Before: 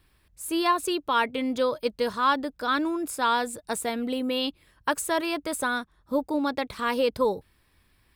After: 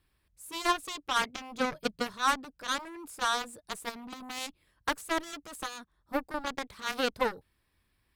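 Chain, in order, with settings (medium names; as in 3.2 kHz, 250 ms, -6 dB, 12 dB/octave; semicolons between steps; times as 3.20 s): Chebyshev shaper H 4 -27 dB, 6 -33 dB, 7 -13 dB, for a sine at -10.5 dBFS; 1.60–2.08 s: peaking EQ 150 Hz +13 dB 0.79 oct; trim -4.5 dB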